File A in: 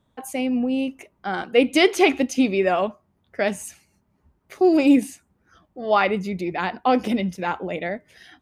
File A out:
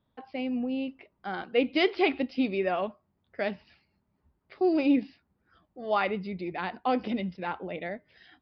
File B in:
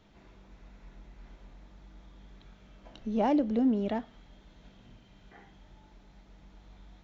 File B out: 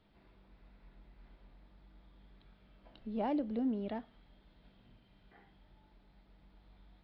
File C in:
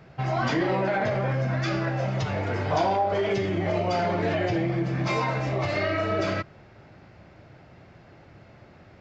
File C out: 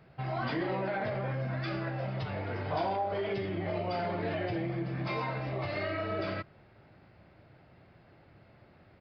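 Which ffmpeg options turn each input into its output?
-af "aresample=11025,aresample=44100,volume=-8dB"

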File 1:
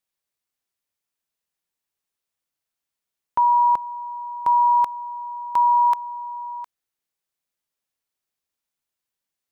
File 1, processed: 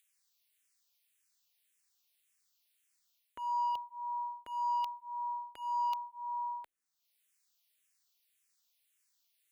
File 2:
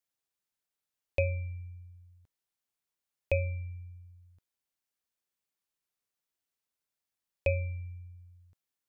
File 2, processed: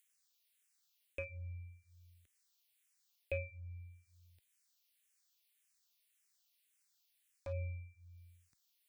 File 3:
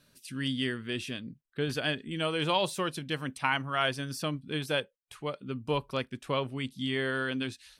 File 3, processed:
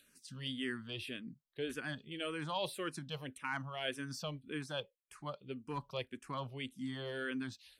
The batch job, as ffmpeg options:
-filter_complex "[0:a]lowshelf=f=100:g=-3.5,areverse,acompressor=threshold=-28dB:ratio=4,areverse,acrossover=split=1900[a][b];[a]asoftclip=type=hard:threshold=-25.5dB[c];[b]acompressor=mode=upward:threshold=-55dB:ratio=2.5[d];[c][d]amix=inputs=2:normalize=0,asplit=2[e][f];[f]afreqshift=-1.8[g];[e][g]amix=inputs=2:normalize=1,volume=-4dB"

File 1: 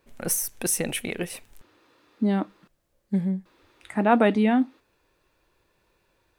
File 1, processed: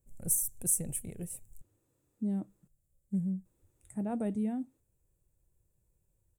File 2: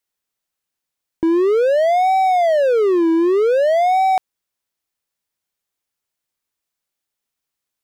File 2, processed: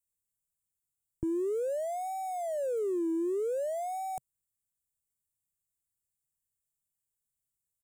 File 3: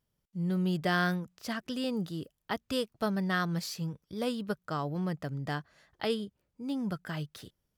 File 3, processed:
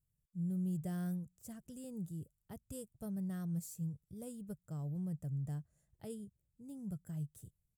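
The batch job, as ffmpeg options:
-af "firequalizer=gain_entry='entry(130,0);entry(250,-15);entry(560,-17);entry(1100,-28);entry(4600,-28);entry(7500,-1);entry(12000,-4)':delay=0.05:min_phase=1"

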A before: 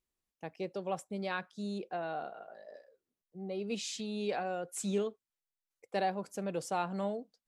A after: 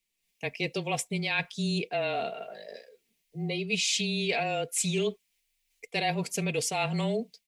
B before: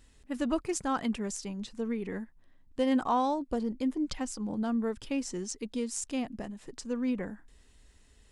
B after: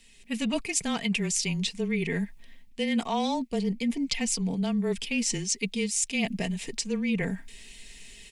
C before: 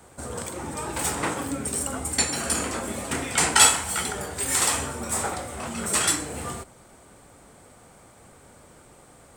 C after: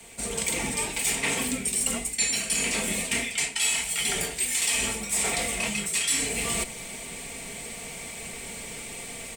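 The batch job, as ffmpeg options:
-af "aecho=1:1:4.3:0.48,dynaudnorm=f=180:g=3:m=10dB,highshelf=f=1.8k:t=q:w=3:g=8,areverse,acompressor=threshold=-24dB:ratio=5,areverse,afreqshift=-23,volume=-1.5dB"

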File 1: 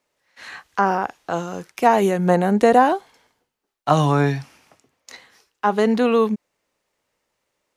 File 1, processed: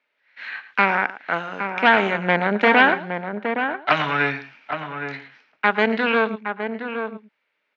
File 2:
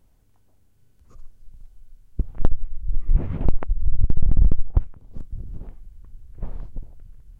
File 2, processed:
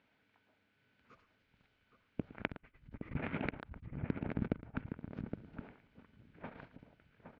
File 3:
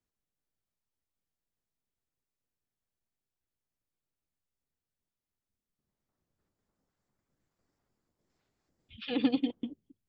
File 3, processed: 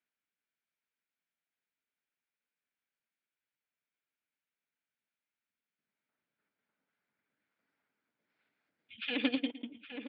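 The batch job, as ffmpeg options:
-filter_complex "[0:a]asplit=2[a][b];[b]aecho=0:1:112:0.211[c];[a][c]amix=inputs=2:normalize=0,aeval=exprs='0.891*(cos(1*acos(clip(val(0)/0.891,-1,1)))-cos(1*PI/2))+0.158*(cos(6*acos(clip(val(0)/0.891,-1,1)))-cos(6*PI/2))':c=same,highpass=330,equalizer=f=360:t=q:w=4:g=-9,equalizer=f=520:t=q:w=4:g=-6,equalizer=f=750:t=q:w=4:g=-6,equalizer=f=1.1k:t=q:w=4:g=-6,equalizer=f=1.5k:t=q:w=4:g=6,equalizer=f=2.3k:t=q:w=4:g=7,lowpass=f=3.7k:w=0.5412,lowpass=f=3.7k:w=1.3066,asplit=2[d][e];[e]adelay=816.3,volume=-7dB,highshelf=f=4k:g=-18.4[f];[d][f]amix=inputs=2:normalize=0,volume=1.5dB"

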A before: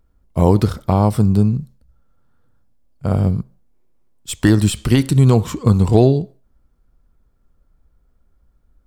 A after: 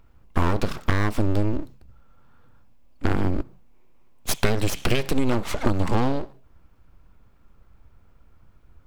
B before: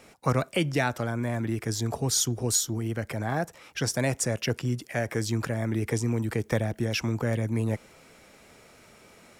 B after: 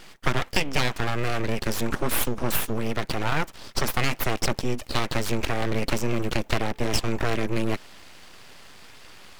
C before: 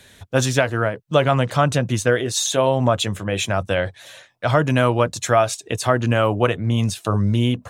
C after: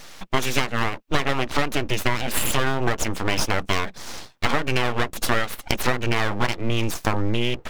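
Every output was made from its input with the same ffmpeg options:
-af "equalizer=f=1k:t=o:w=0.67:g=6,equalizer=f=2.5k:t=o:w=0.67:g=9,equalizer=f=10k:t=o:w=0.67:g=-5,aeval=exprs='abs(val(0))':c=same,acompressor=threshold=-22dB:ratio=6,volume=5.5dB"

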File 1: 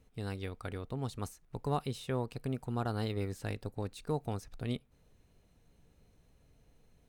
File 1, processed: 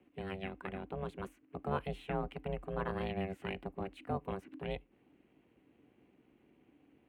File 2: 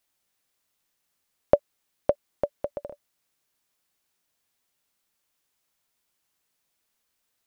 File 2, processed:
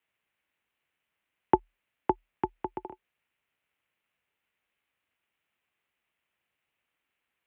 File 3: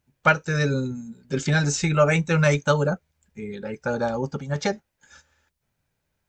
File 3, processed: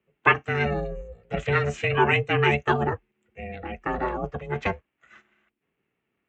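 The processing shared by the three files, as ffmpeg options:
-af "highshelf=f=3.5k:t=q:w=3:g=-12,aeval=exprs='val(0)*sin(2*PI*250*n/s)':c=same,afreqshift=39"

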